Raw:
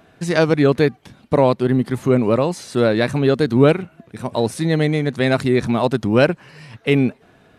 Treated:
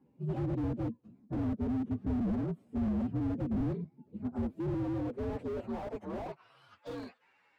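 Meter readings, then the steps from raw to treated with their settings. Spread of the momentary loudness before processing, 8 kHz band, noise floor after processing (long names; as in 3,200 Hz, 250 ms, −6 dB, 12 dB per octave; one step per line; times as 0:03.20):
7 LU, below −30 dB, −70 dBFS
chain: partials spread apart or drawn together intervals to 125%
in parallel at −12 dB: wrap-around overflow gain 9 dB
on the sum: band-pass filter sweep 230 Hz → 1,700 Hz, 0:04.23–0:07.13
slew-rate limiting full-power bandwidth 12 Hz
level −4 dB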